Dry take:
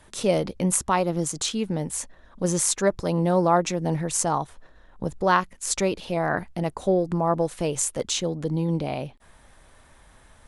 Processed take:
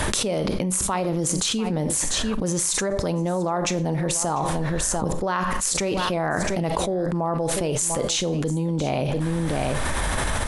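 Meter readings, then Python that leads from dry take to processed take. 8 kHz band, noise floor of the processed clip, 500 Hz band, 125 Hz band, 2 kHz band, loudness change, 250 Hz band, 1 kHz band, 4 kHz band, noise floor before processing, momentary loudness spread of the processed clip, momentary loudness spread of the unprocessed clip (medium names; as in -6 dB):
+3.5 dB, -26 dBFS, 0.0 dB, +2.5 dB, +3.0 dB, +1.0 dB, +1.5 dB, -0.5 dB, +5.5 dB, -54 dBFS, 3 LU, 9 LU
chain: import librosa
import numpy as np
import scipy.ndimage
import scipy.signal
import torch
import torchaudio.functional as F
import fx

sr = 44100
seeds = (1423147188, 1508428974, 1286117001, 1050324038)

p1 = x + fx.echo_single(x, sr, ms=694, db=-18.5, dry=0)
p2 = fx.rev_schroeder(p1, sr, rt60_s=0.36, comb_ms=29, drr_db=13.5)
p3 = fx.env_flatten(p2, sr, amount_pct=100)
y = p3 * 10.0 ** (-7.5 / 20.0)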